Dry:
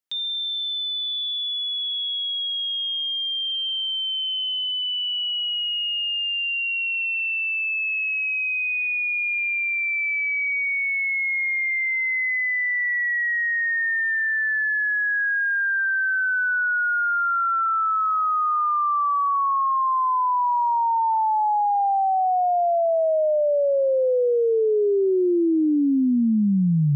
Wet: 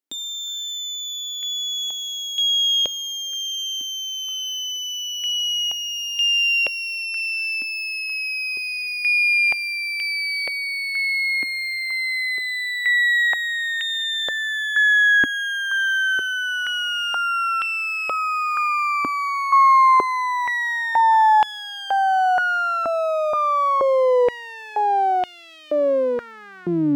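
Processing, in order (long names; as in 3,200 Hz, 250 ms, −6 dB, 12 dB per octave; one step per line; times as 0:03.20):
half-wave rectification
high-pass on a step sequencer 2.1 Hz 280–3,000 Hz
level +2.5 dB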